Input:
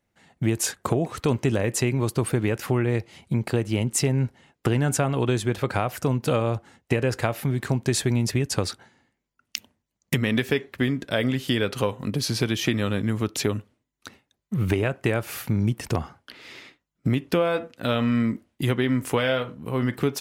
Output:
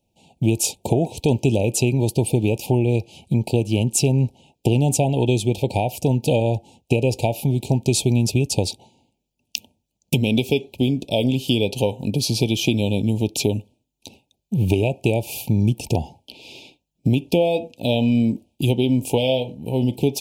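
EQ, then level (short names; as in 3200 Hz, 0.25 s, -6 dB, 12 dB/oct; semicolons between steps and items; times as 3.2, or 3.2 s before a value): Chebyshev band-stop 910–2400 Hz, order 5; +5.0 dB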